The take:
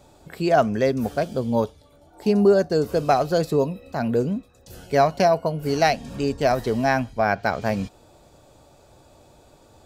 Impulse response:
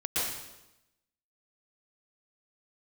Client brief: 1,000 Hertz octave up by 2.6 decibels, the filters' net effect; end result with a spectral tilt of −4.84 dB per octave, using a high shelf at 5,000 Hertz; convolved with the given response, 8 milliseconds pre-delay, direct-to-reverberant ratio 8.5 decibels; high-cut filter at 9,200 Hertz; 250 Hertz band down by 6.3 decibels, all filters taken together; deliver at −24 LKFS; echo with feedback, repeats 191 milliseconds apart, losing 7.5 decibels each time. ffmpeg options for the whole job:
-filter_complex "[0:a]lowpass=9200,equalizer=frequency=250:width_type=o:gain=-9,equalizer=frequency=1000:width_type=o:gain=5,highshelf=frequency=5000:gain=8,aecho=1:1:191|382|573|764|955:0.422|0.177|0.0744|0.0312|0.0131,asplit=2[link_01][link_02];[1:a]atrim=start_sample=2205,adelay=8[link_03];[link_02][link_03]afir=irnorm=-1:irlink=0,volume=-17dB[link_04];[link_01][link_04]amix=inputs=2:normalize=0,volume=-3.5dB"

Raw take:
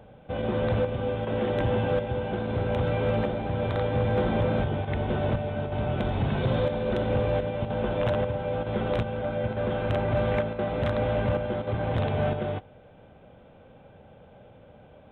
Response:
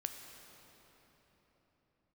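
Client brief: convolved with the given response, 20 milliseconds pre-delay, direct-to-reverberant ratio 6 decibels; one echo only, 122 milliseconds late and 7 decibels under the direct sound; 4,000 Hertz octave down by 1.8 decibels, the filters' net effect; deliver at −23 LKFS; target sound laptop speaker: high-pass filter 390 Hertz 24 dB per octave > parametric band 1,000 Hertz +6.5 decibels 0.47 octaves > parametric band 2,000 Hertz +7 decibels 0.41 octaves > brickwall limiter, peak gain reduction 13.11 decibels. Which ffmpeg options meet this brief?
-filter_complex "[0:a]equalizer=frequency=4000:width_type=o:gain=-3.5,aecho=1:1:122:0.447,asplit=2[link_01][link_02];[1:a]atrim=start_sample=2205,adelay=20[link_03];[link_02][link_03]afir=irnorm=-1:irlink=0,volume=-5dB[link_04];[link_01][link_04]amix=inputs=2:normalize=0,highpass=frequency=390:width=0.5412,highpass=frequency=390:width=1.3066,equalizer=frequency=1000:width_type=o:width=0.47:gain=6.5,equalizer=frequency=2000:width_type=o:width=0.41:gain=7,volume=11dB,alimiter=limit=-15dB:level=0:latency=1"

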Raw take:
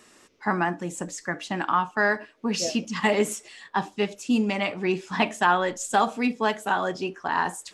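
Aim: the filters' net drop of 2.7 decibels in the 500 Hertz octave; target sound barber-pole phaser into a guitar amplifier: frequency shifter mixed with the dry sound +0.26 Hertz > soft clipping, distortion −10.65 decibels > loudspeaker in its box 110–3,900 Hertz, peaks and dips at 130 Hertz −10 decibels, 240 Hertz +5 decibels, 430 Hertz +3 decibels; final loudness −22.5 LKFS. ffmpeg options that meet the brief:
ffmpeg -i in.wav -filter_complex "[0:a]equalizer=frequency=500:width_type=o:gain=-6,asplit=2[link_01][link_02];[link_02]afreqshift=0.26[link_03];[link_01][link_03]amix=inputs=2:normalize=1,asoftclip=threshold=-23.5dB,highpass=110,equalizer=frequency=130:width_type=q:width=4:gain=-10,equalizer=frequency=240:width_type=q:width=4:gain=5,equalizer=frequency=430:width_type=q:width=4:gain=3,lowpass=frequency=3900:width=0.5412,lowpass=frequency=3900:width=1.3066,volume=10dB" out.wav

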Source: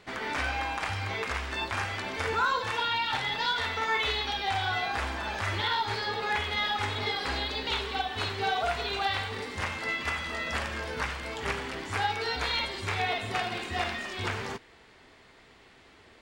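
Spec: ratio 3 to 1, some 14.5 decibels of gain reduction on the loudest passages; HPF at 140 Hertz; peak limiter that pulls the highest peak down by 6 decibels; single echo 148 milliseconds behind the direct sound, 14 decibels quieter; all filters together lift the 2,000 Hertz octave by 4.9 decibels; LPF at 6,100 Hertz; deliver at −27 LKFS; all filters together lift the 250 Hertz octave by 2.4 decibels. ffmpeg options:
ffmpeg -i in.wav -af "highpass=140,lowpass=6100,equalizer=frequency=250:width_type=o:gain=3.5,equalizer=frequency=2000:width_type=o:gain=6,acompressor=threshold=-42dB:ratio=3,alimiter=level_in=8.5dB:limit=-24dB:level=0:latency=1,volume=-8.5dB,aecho=1:1:148:0.2,volume=13.5dB" out.wav

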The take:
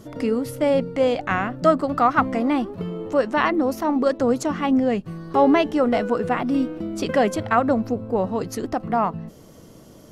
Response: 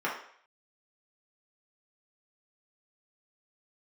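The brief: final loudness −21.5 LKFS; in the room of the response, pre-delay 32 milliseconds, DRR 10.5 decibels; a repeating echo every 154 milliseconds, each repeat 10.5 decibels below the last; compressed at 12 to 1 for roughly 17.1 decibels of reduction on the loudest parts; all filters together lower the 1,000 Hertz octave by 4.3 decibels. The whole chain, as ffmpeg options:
-filter_complex "[0:a]equalizer=frequency=1000:width_type=o:gain=-6,acompressor=threshold=-32dB:ratio=12,aecho=1:1:154|308|462:0.299|0.0896|0.0269,asplit=2[link_01][link_02];[1:a]atrim=start_sample=2205,adelay=32[link_03];[link_02][link_03]afir=irnorm=-1:irlink=0,volume=-20dB[link_04];[link_01][link_04]amix=inputs=2:normalize=0,volume=14.5dB"

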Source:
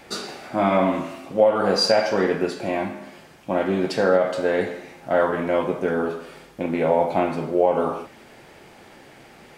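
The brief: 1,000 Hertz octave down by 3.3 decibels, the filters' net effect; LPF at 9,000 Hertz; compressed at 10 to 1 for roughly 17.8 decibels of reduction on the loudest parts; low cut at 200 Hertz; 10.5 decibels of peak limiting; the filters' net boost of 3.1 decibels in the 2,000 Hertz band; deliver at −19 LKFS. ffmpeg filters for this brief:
ffmpeg -i in.wav -af "highpass=200,lowpass=9000,equalizer=frequency=1000:width_type=o:gain=-6.5,equalizer=frequency=2000:width_type=o:gain=6.5,acompressor=threshold=-32dB:ratio=10,volume=21dB,alimiter=limit=-9dB:level=0:latency=1" out.wav

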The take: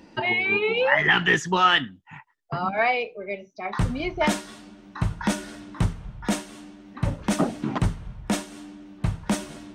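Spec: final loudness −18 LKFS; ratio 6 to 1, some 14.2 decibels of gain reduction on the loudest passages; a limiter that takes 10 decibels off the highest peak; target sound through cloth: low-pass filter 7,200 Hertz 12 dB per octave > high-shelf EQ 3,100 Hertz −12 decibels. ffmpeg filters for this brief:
ffmpeg -i in.wav -af "acompressor=threshold=-31dB:ratio=6,alimiter=level_in=4dB:limit=-24dB:level=0:latency=1,volume=-4dB,lowpass=7200,highshelf=frequency=3100:gain=-12,volume=22.5dB" out.wav

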